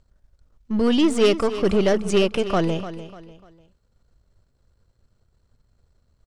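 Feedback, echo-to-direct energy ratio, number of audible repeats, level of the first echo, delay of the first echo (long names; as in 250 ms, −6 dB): 35%, −12.5 dB, 3, −13.0 dB, 297 ms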